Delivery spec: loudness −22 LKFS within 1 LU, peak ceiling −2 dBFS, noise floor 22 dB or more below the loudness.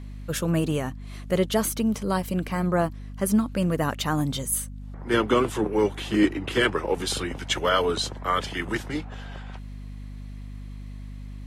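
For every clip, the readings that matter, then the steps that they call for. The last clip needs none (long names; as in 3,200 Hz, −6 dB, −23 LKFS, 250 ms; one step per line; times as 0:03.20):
mains hum 50 Hz; hum harmonics up to 250 Hz; level of the hum −35 dBFS; integrated loudness −25.5 LKFS; sample peak −8.0 dBFS; target loudness −22.0 LKFS
→ hum removal 50 Hz, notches 5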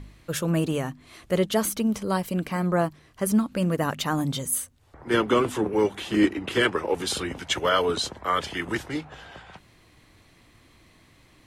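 mains hum none found; integrated loudness −25.5 LKFS; sample peak −8.0 dBFS; target loudness −22.0 LKFS
→ level +3.5 dB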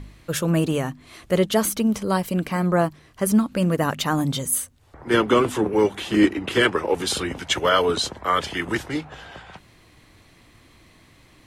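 integrated loudness −22.0 LKFS; sample peak −4.5 dBFS; background noise floor −54 dBFS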